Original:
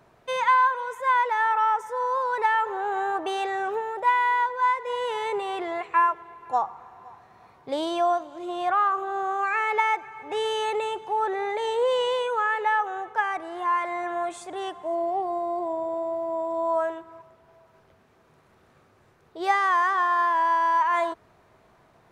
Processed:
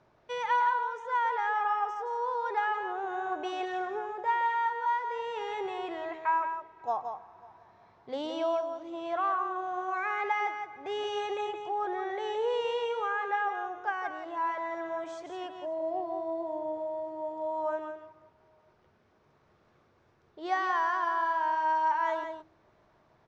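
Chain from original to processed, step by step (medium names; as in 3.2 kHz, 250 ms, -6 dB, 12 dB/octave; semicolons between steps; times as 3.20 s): Chebyshev low-pass 6.1 kHz, order 3; de-hum 67.21 Hz, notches 5; tape speed -5%; on a send: delay 171 ms -7 dB; on the sum: trim -7 dB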